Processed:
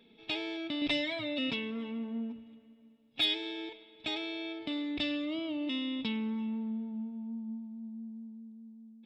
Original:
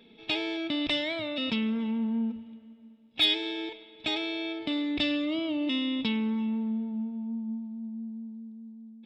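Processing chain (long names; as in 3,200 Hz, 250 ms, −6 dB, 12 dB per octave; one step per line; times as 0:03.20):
0:00.81–0:03.21: comb filter 7.2 ms, depth 95%
level −5.5 dB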